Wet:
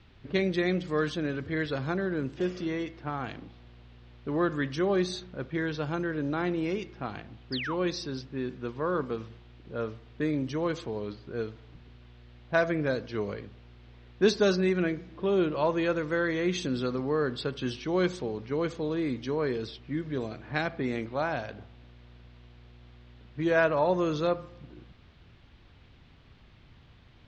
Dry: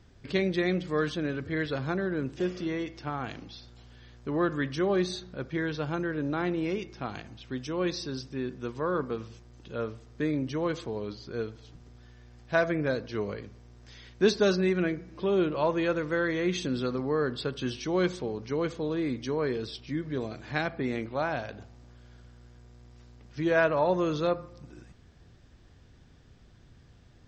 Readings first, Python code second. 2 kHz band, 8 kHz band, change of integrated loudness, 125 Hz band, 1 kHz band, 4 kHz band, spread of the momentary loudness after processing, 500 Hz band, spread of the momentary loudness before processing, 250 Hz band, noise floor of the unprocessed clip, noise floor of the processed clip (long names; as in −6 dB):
0.0 dB, −1.0 dB, 0.0 dB, 0.0 dB, 0.0 dB, 0.0 dB, 11 LU, 0.0 dB, 12 LU, 0.0 dB, −56 dBFS, −56 dBFS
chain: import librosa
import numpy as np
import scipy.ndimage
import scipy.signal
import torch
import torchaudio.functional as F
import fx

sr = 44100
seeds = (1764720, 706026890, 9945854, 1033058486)

y = fx.env_lowpass(x, sr, base_hz=530.0, full_db=-27.0)
y = fx.spec_paint(y, sr, seeds[0], shape='fall', start_s=7.52, length_s=0.23, low_hz=780.0, high_hz=5300.0, level_db=-35.0)
y = fx.dmg_noise_band(y, sr, seeds[1], low_hz=510.0, high_hz=3800.0, level_db=-65.0)